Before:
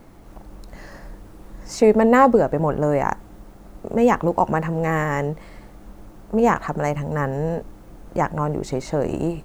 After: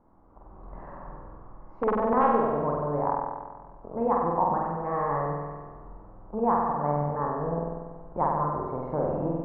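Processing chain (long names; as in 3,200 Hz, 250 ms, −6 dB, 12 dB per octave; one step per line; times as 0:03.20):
wrap-around overflow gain 4.5 dB
automatic gain control gain up to 12 dB
transistor ladder low-pass 1,200 Hz, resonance 55%
flutter between parallel walls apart 8.2 metres, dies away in 1.4 s
level −8.5 dB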